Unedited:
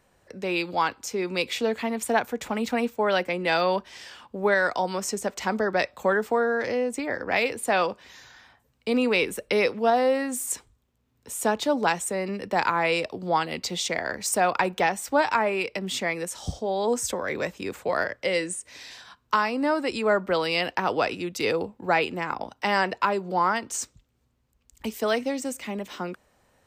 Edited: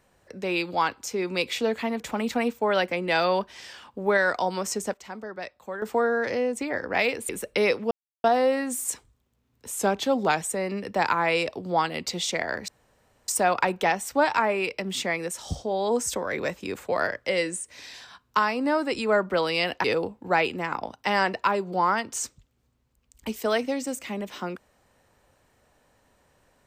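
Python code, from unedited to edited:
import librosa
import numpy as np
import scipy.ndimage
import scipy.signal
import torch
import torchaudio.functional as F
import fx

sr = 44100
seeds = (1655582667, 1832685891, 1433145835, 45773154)

y = fx.edit(x, sr, fx.cut(start_s=2.0, length_s=0.37),
    fx.fade_down_up(start_s=5.1, length_s=1.3, db=-12.0, fade_s=0.21, curve='log'),
    fx.cut(start_s=7.66, length_s=1.58),
    fx.insert_silence(at_s=9.86, length_s=0.33),
    fx.speed_span(start_s=11.39, length_s=0.59, speed=0.92),
    fx.insert_room_tone(at_s=14.25, length_s=0.6),
    fx.cut(start_s=20.81, length_s=0.61), tone=tone)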